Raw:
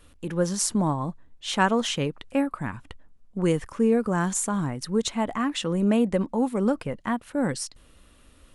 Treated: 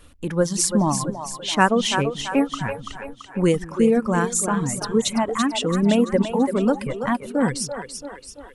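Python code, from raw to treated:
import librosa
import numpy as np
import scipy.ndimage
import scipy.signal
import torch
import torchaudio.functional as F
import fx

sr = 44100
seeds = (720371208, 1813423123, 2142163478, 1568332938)

y = fx.echo_split(x, sr, split_hz=320.0, low_ms=170, high_ms=335, feedback_pct=52, wet_db=-6.0)
y = fx.dereverb_blind(y, sr, rt60_s=1.5)
y = F.gain(torch.from_numpy(y), 5.0).numpy()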